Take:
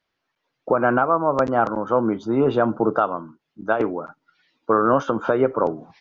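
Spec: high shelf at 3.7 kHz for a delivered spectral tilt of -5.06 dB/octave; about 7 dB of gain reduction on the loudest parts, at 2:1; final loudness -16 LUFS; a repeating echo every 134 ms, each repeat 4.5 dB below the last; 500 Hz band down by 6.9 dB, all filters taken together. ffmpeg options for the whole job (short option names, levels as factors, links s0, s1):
-af "equalizer=f=500:t=o:g=-9,highshelf=f=3700:g=8.5,acompressor=threshold=0.0355:ratio=2,aecho=1:1:134|268|402|536|670|804|938|1072|1206:0.596|0.357|0.214|0.129|0.0772|0.0463|0.0278|0.0167|0.01,volume=4.22"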